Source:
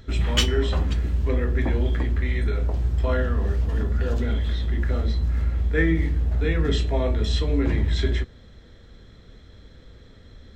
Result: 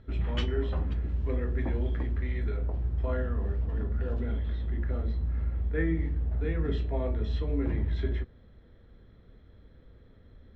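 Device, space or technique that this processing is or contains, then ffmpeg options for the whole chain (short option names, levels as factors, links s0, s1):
phone in a pocket: -filter_complex "[0:a]lowpass=3600,highshelf=f=2100:g=-10,asettb=1/sr,asplit=3[s0][s1][s2];[s0]atrim=end=1.094[s3];[s1]atrim=start=1.09:end=2.57,asetpts=PTS-STARTPTS,afade=t=in:d=0.004:c=qsin,afade=t=out:st=1.476:d=0.004:c=qsin,aemphasis=mode=production:type=50kf[s4];[s2]atrim=start=2.566[s5];[s3][s4]acrossfade=d=0.004:c1=hsin:c2=qsin[s6];[s6][s5]acrossfade=d=0.004:c1=qsin:c2=hsin,volume=0.447"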